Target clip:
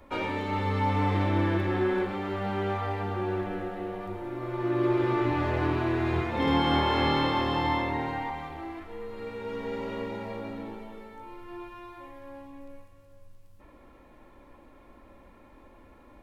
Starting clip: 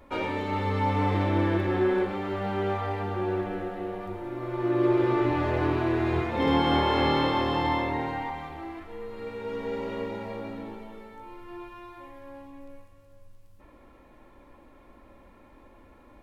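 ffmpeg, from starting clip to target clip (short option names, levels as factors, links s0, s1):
-filter_complex "[0:a]acrossover=split=400|590[s0][s1][s2];[s1]acompressor=threshold=0.00631:ratio=6[s3];[s0][s3][s2]amix=inputs=3:normalize=0"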